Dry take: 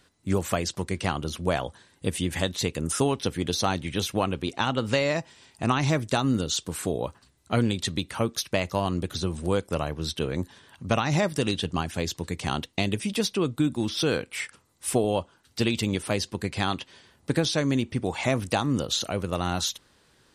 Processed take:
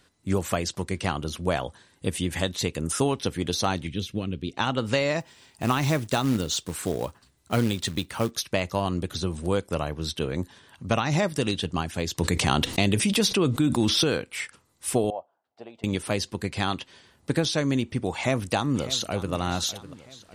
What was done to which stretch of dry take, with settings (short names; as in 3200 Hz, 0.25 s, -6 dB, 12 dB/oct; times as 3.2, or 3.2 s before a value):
3.87–4.57 EQ curve 230 Hz 0 dB, 450 Hz -6 dB, 830 Hz -20 dB, 1900 Hz -10 dB, 3400 Hz -4 dB, 8400 Hz -13 dB
5.2–8.31 short-mantissa float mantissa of 2-bit
12.18–14.04 fast leveller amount 70%
15.1–15.84 band-pass 700 Hz, Q 5.2
18.14–19.33 echo throw 0.6 s, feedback 50%, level -15 dB